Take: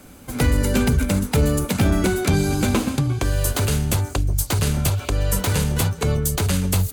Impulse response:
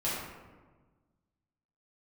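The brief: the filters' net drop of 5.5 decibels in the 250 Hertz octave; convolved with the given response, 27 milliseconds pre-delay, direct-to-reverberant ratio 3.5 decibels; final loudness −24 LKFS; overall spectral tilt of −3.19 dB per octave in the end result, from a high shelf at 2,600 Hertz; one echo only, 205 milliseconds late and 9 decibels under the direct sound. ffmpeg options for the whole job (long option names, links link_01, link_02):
-filter_complex "[0:a]equalizer=frequency=250:width_type=o:gain=-8,highshelf=frequency=2600:gain=8.5,aecho=1:1:205:0.355,asplit=2[link_01][link_02];[1:a]atrim=start_sample=2205,adelay=27[link_03];[link_02][link_03]afir=irnorm=-1:irlink=0,volume=-11dB[link_04];[link_01][link_04]amix=inputs=2:normalize=0,volume=-6.5dB"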